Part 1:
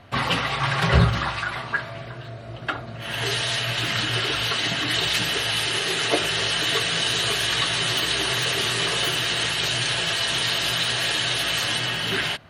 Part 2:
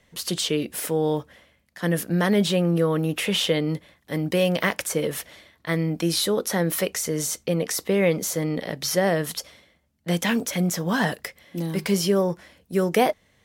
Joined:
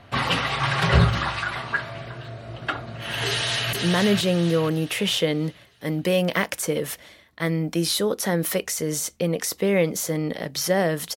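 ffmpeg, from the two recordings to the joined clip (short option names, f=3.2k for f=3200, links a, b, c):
-filter_complex "[0:a]apad=whole_dur=11.16,atrim=end=11.16,atrim=end=3.732[a];[1:a]atrim=start=1.998:end=9.43[b];[a][b]acrossfade=d=0.004:c1=hsin:c2=hsin,asplit=2[c][d];[d]afade=t=in:st=3.26:d=0.01,afade=t=out:st=3.73:d=0.01,aecho=0:1:480|960|1440|1920|2400:0.668344|0.267338|0.106935|0.042774|0.0171096[e];[c][e]amix=inputs=2:normalize=0"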